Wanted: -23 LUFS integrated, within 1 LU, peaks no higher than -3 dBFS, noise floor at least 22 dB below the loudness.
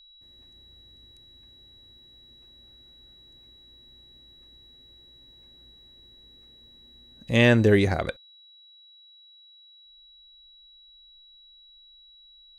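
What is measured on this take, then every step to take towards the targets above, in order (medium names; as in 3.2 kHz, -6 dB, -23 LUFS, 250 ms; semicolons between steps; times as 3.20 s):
steady tone 3.9 kHz; tone level -51 dBFS; loudness -21.0 LUFS; peak level -6.0 dBFS; loudness target -23.0 LUFS
-> band-stop 3.9 kHz, Q 30; trim -2 dB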